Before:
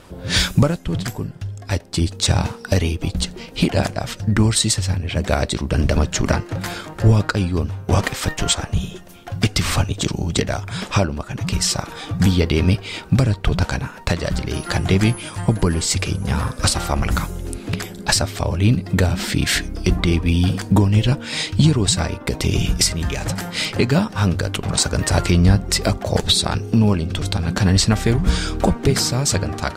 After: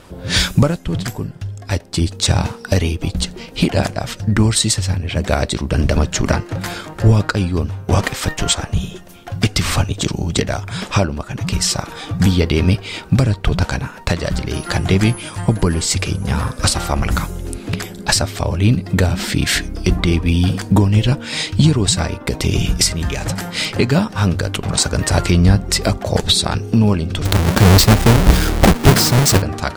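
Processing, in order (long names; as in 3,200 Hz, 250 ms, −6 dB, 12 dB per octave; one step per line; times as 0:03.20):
0:27.25–0:29.42: each half-wave held at its own peak
level +2 dB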